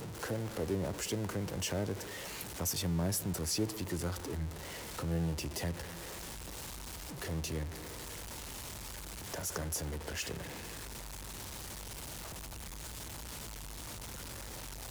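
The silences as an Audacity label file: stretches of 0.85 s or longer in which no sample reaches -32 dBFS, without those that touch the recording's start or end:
5.800000	7.220000	silence
7.620000	9.340000	silence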